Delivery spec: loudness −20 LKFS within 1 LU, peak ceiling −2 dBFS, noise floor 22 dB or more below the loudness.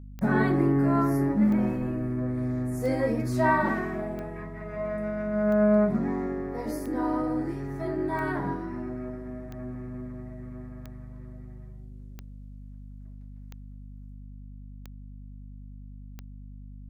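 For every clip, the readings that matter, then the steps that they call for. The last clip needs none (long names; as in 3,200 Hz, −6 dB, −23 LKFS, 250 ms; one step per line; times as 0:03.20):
number of clicks 13; mains hum 50 Hz; hum harmonics up to 250 Hz; level of the hum −40 dBFS; integrated loudness −27.5 LKFS; sample peak −11.0 dBFS; target loudness −20.0 LKFS
→ click removal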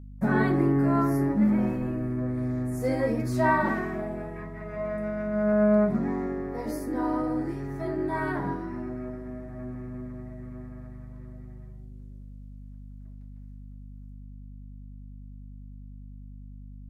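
number of clicks 0; mains hum 50 Hz; hum harmonics up to 250 Hz; level of the hum −40 dBFS
→ hum removal 50 Hz, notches 5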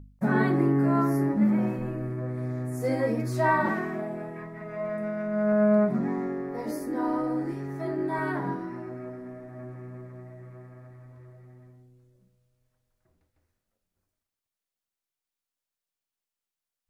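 mains hum none found; integrated loudness −27.5 LKFS; sample peak −11.0 dBFS; target loudness −20.0 LKFS
→ level +7.5 dB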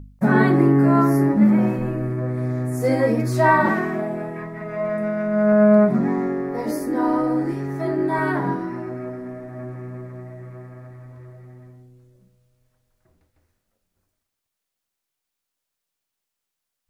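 integrated loudness −20.0 LKFS; sample peak −3.5 dBFS; background noise floor −82 dBFS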